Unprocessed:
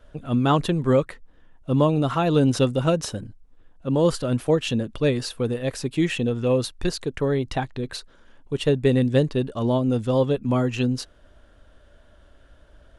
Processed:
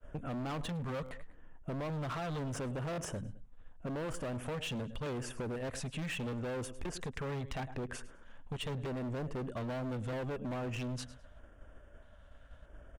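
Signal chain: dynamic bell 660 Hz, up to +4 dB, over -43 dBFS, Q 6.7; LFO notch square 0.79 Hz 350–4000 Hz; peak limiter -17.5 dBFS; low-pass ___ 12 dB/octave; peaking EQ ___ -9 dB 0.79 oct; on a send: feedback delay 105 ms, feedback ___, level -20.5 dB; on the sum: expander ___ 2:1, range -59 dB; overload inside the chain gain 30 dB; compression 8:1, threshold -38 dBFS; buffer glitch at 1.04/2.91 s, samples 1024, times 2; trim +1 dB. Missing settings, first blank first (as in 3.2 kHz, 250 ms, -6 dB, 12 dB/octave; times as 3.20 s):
8.4 kHz, 4.7 kHz, 30%, -44 dBFS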